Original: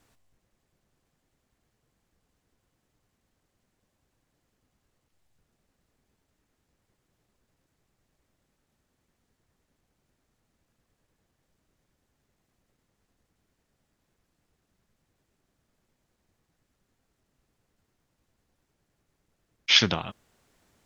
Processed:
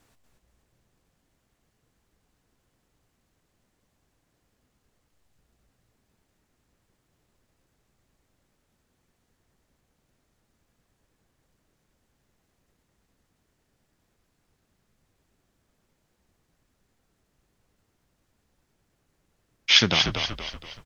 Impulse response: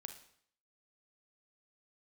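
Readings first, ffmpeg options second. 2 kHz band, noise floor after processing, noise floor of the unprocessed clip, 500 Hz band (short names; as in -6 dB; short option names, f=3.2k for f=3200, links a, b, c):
+3.5 dB, -74 dBFS, -78 dBFS, +3.0 dB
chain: -filter_complex "[0:a]asplit=6[a][b][c][d][e][f];[b]adelay=237,afreqshift=-60,volume=-5.5dB[g];[c]adelay=474,afreqshift=-120,volume=-12.6dB[h];[d]adelay=711,afreqshift=-180,volume=-19.8dB[i];[e]adelay=948,afreqshift=-240,volume=-26.9dB[j];[f]adelay=1185,afreqshift=-300,volume=-34dB[k];[a][g][h][i][j][k]amix=inputs=6:normalize=0,volume=2dB"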